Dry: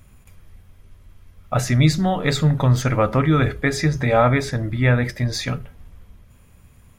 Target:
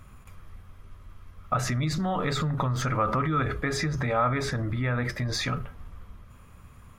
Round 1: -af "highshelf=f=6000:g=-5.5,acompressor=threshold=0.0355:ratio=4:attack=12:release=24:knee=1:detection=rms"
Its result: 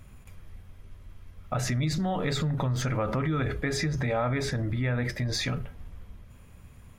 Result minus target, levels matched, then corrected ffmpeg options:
1 kHz band -5.0 dB
-af "highshelf=f=6000:g=-5.5,acompressor=threshold=0.0355:ratio=4:attack=12:release=24:knee=1:detection=rms,equalizer=f=1200:w=2.6:g=10"

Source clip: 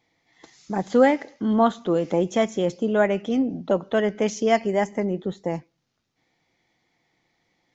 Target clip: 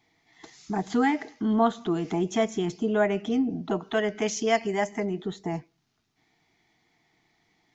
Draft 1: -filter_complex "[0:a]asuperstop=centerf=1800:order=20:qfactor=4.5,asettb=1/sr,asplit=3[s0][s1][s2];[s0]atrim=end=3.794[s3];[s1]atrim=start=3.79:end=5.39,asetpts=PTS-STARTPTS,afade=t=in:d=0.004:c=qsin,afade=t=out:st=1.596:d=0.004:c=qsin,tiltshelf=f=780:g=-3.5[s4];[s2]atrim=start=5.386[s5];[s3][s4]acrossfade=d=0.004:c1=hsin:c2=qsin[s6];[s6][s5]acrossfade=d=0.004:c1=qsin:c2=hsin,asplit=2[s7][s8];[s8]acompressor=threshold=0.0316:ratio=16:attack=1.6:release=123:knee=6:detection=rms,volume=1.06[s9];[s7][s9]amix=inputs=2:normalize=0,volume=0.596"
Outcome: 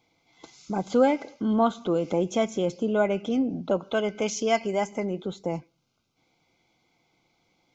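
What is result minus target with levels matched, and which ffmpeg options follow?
2 kHz band -3.0 dB
-filter_complex "[0:a]asuperstop=centerf=540:order=20:qfactor=4.5,asettb=1/sr,asplit=3[s0][s1][s2];[s0]atrim=end=3.794[s3];[s1]atrim=start=3.79:end=5.39,asetpts=PTS-STARTPTS,afade=t=in:d=0.004:c=qsin,afade=t=out:st=1.596:d=0.004:c=qsin,tiltshelf=f=780:g=-3.5[s4];[s2]atrim=start=5.386[s5];[s3][s4]acrossfade=d=0.004:c1=hsin:c2=qsin[s6];[s6][s5]acrossfade=d=0.004:c1=qsin:c2=hsin,asplit=2[s7][s8];[s8]acompressor=threshold=0.0316:ratio=16:attack=1.6:release=123:knee=6:detection=rms,volume=1.06[s9];[s7][s9]amix=inputs=2:normalize=0,volume=0.596"

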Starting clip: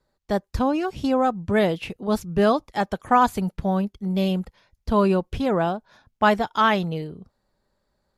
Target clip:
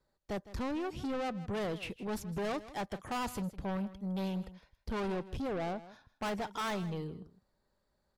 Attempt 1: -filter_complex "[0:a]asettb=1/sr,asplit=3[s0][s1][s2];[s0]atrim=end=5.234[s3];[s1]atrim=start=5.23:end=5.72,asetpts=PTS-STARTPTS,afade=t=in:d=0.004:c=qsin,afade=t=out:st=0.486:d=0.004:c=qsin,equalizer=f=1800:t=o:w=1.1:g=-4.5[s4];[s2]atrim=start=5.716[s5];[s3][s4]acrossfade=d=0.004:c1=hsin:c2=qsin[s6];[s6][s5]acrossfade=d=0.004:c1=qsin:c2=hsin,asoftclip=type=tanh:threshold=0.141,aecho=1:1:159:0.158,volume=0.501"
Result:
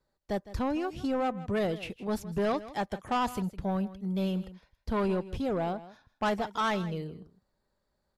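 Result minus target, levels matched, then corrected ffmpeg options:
saturation: distortion -6 dB
-filter_complex "[0:a]asettb=1/sr,asplit=3[s0][s1][s2];[s0]atrim=end=5.234[s3];[s1]atrim=start=5.23:end=5.72,asetpts=PTS-STARTPTS,afade=t=in:d=0.004:c=qsin,afade=t=out:st=0.486:d=0.004:c=qsin,equalizer=f=1800:t=o:w=1.1:g=-4.5[s4];[s2]atrim=start=5.716[s5];[s3][s4]acrossfade=d=0.004:c1=hsin:c2=qsin[s6];[s6][s5]acrossfade=d=0.004:c1=qsin:c2=hsin,asoftclip=type=tanh:threshold=0.0447,aecho=1:1:159:0.158,volume=0.501"

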